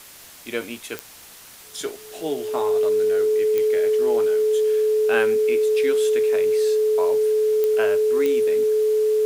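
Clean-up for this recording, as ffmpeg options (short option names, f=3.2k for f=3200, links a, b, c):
-af "adeclick=t=4,bandreject=f=430:w=30,afwtdn=0.0071"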